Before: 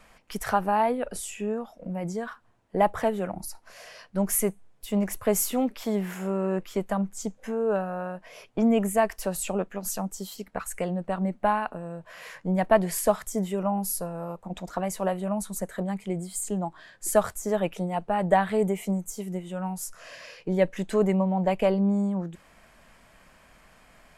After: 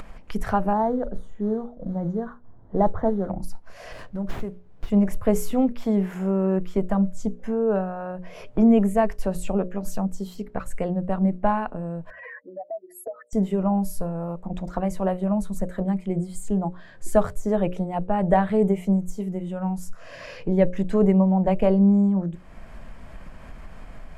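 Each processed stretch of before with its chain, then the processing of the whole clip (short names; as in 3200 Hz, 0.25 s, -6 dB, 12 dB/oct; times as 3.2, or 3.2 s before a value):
0.73–3.3 modulation noise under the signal 16 dB + running mean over 17 samples
3.92–4.9 high shelf 9600 Hz +10 dB + compressor 3:1, threshold -34 dBFS + running maximum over 5 samples
12.1–13.33 spectral contrast raised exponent 3.3 + steep high-pass 290 Hz 72 dB/oct + compressor 2:1, threshold -45 dBFS
whole clip: tilt -3 dB/oct; notches 60/120/180/240/300/360/420/480/540/600 Hz; upward compressor, threshold -29 dBFS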